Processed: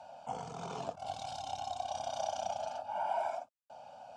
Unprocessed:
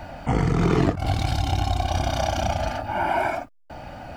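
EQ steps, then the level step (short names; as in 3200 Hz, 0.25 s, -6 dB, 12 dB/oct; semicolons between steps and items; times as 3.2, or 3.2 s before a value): speaker cabinet 380–8400 Hz, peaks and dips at 450 Hz -4 dB, 1200 Hz -9 dB, 4400 Hz -5 dB; fixed phaser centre 800 Hz, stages 4; -8.5 dB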